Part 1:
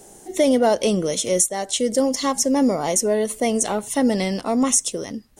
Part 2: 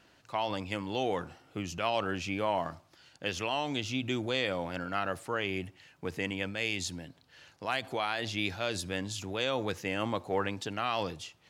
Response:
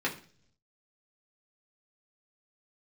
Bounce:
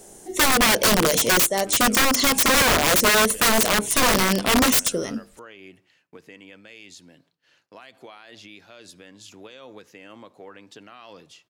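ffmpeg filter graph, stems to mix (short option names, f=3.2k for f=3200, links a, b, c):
-filter_complex "[0:a]bandreject=f=50:t=h:w=6,bandreject=f=100:t=h:w=6,bandreject=f=150:t=h:w=6,bandreject=f=200:t=h:w=6,bandreject=f=250:t=h:w=6,bandreject=f=300:t=h:w=6,bandreject=f=350:t=h:w=6,bandreject=f=400:t=h:w=6,bandreject=f=450:t=h:w=6,dynaudnorm=f=190:g=7:m=11dB,aeval=exprs='(mod(3.98*val(0)+1,2)-1)/3.98':c=same,volume=0dB[a];[1:a]agate=range=-33dB:threshold=-53dB:ratio=3:detection=peak,highpass=180,alimiter=level_in=3dB:limit=-24dB:level=0:latency=1:release=219,volume=-3dB,adelay=100,volume=-5.5dB,asplit=2[b][c];[c]volume=-23dB[d];[2:a]atrim=start_sample=2205[e];[d][e]afir=irnorm=-1:irlink=0[f];[a][b][f]amix=inputs=3:normalize=0,equalizer=f=810:w=6.1:g=-4.5"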